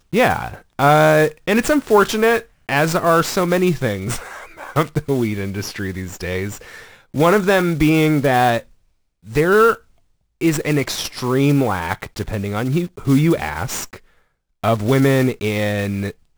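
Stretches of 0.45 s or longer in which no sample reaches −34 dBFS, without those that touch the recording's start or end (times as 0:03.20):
0:08.61–0:09.26
0:09.77–0:10.41
0:13.97–0:14.64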